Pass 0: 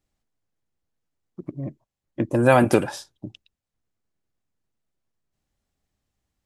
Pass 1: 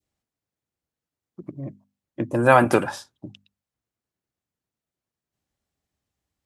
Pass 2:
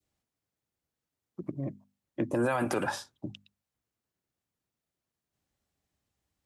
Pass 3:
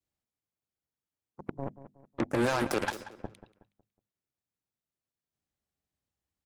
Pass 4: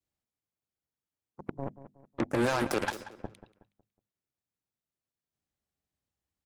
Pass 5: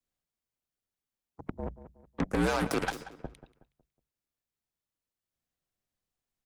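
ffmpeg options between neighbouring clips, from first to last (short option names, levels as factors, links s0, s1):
-af "highpass=59,bandreject=f=50:t=h:w=6,bandreject=f=100:t=h:w=6,bandreject=f=150:t=h:w=6,bandreject=f=200:t=h:w=6,bandreject=f=250:t=h:w=6,adynamicequalizer=threshold=0.0224:dfrequency=1200:dqfactor=0.99:tfrequency=1200:tqfactor=0.99:attack=5:release=100:ratio=0.375:range=4:mode=boostabove:tftype=bell,volume=0.794"
-filter_complex "[0:a]acrossover=split=200|3000[s0][s1][s2];[s0]acompressor=threshold=0.0158:ratio=4[s3];[s1]acompressor=threshold=0.1:ratio=4[s4];[s2]acompressor=threshold=0.0112:ratio=4[s5];[s3][s4][s5]amix=inputs=3:normalize=0,alimiter=limit=0.106:level=0:latency=1:release=44"
-filter_complex "[0:a]aeval=exprs='0.112*(cos(1*acos(clip(val(0)/0.112,-1,1)))-cos(1*PI/2))+0.0224*(cos(7*acos(clip(val(0)/0.112,-1,1)))-cos(7*PI/2))':c=same,asplit=2[s0][s1];[s1]adelay=184,lowpass=f=3100:p=1,volume=0.2,asplit=2[s2][s3];[s3]adelay=184,lowpass=f=3100:p=1,volume=0.38,asplit=2[s4][s5];[s5]adelay=184,lowpass=f=3100:p=1,volume=0.38,asplit=2[s6][s7];[s7]adelay=184,lowpass=f=3100:p=1,volume=0.38[s8];[s0][s2][s4][s6][s8]amix=inputs=5:normalize=0"
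-af anull
-af "afreqshift=-62"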